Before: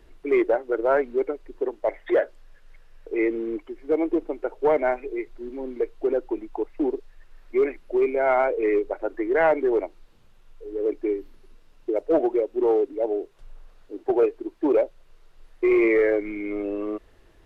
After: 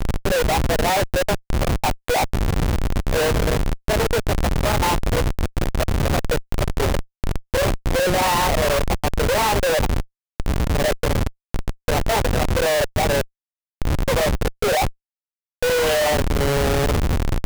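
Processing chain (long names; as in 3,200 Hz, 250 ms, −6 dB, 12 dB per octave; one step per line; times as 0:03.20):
pitch shift by two crossfaded delay taps +5.5 semitones
wind on the microphone 84 Hz −25 dBFS
comparator with hysteresis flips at −28.5 dBFS
level +4.5 dB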